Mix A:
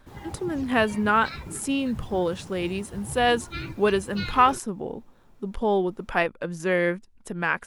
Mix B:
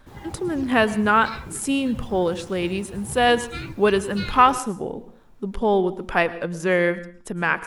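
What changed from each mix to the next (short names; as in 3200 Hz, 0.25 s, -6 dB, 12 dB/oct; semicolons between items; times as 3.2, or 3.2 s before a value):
reverb: on, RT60 0.50 s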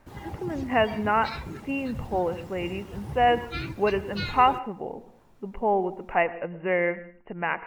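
speech: add rippled Chebyshev low-pass 2900 Hz, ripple 9 dB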